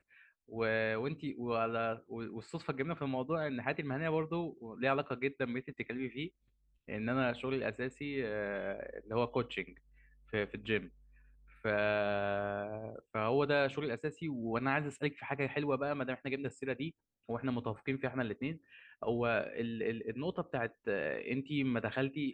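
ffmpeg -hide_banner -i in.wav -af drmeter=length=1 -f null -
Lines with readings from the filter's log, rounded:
Channel 1: DR: 13.8
Overall DR: 13.8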